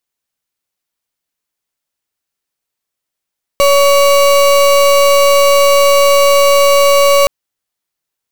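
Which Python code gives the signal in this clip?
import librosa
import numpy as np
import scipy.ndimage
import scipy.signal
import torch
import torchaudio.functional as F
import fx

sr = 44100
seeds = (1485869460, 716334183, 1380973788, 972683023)

y = fx.pulse(sr, length_s=3.67, hz=564.0, level_db=-8.0, duty_pct=33)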